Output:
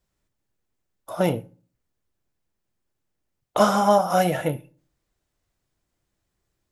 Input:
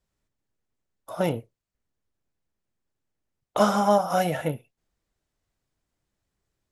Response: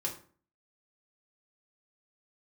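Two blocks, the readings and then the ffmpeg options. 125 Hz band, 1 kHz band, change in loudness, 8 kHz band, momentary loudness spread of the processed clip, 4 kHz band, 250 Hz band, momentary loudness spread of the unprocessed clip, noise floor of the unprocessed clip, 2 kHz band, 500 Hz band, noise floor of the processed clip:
+3.0 dB, +3.0 dB, +2.5 dB, +3.5 dB, 14 LU, +3.0 dB, +2.0 dB, 15 LU, -84 dBFS, +3.0 dB, +2.5 dB, -79 dBFS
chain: -filter_complex "[0:a]asplit=2[a][b];[1:a]atrim=start_sample=2205,highshelf=f=9.2k:g=12[c];[b][c]afir=irnorm=-1:irlink=0,volume=-14.5dB[d];[a][d]amix=inputs=2:normalize=0,volume=1.5dB"

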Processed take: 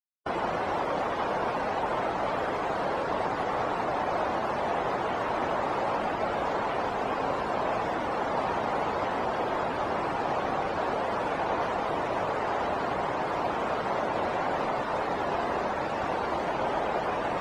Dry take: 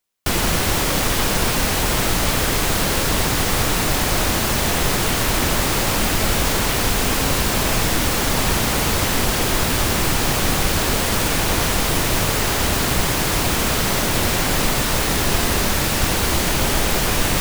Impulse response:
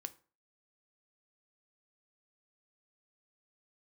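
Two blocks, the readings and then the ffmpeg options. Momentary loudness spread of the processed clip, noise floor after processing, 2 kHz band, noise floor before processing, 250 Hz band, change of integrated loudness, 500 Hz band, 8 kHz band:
1 LU, -31 dBFS, -12.0 dB, -20 dBFS, -12.0 dB, -11.0 dB, -4.5 dB, under -30 dB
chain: -af "afftdn=nr=33:nf=-25,bandpass=f=770:t=q:w=1.4:csg=0"

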